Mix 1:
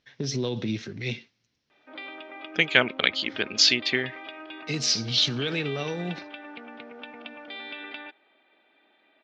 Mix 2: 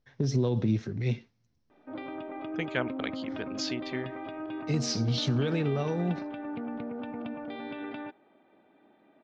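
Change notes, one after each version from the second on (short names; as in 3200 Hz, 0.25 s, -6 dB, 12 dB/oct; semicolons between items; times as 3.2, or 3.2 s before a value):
second voice -7.0 dB; background: remove HPF 670 Hz 6 dB/oct; master: remove weighting filter D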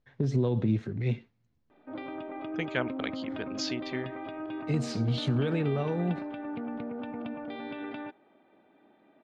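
first voice: remove synth low-pass 5700 Hz, resonance Q 5.1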